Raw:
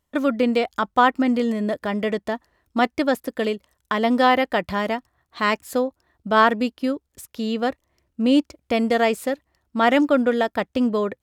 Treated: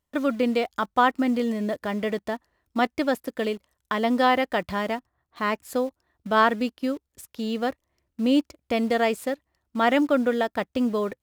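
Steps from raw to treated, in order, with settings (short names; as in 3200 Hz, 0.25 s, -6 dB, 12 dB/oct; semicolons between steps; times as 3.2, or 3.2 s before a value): 4.95–5.58 high shelf 2700 Hz -9 dB; in parallel at -9 dB: bit-crush 6-bit; on the sum: gain -6 dB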